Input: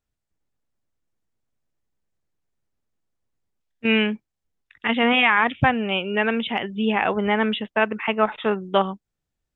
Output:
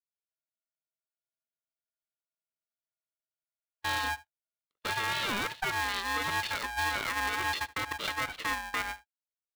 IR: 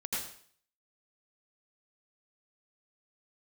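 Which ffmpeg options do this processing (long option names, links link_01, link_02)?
-filter_complex "[0:a]afftfilt=real='real(if(lt(b,960),b+48*(1-2*mod(floor(b/48),2)),b),0)':imag='imag(if(lt(b,960),b+48*(1-2*mod(floor(b/48),2)),b),0)':win_size=2048:overlap=0.75,acrossover=split=2700[link_01][link_02];[link_02]acompressor=threshold=-29dB:ratio=4:attack=1:release=60[link_03];[link_01][link_03]amix=inputs=2:normalize=0,highpass=frequency=710:poles=1,agate=range=-32dB:threshold=-36dB:ratio=16:detection=peak,asplit=2[link_04][link_05];[link_05]acompressor=threshold=-30dB:ratio=5,volume=0.5dB[link_06];[link_04][link_06]amix=inputs=2:normalize=0,alimiter=limit=-14dB:level=0:latency=1:release=70,asplit=2[link_07][link_08];[link_08]aecho=0:1:74:0.0944[link_09];[link_07][link_09]amix=inputs=2:normalize=0,aeval=exprs='val(0)*sgn(sin(2*PI*390*n/s))':channel_layout=same,volume=-8dB"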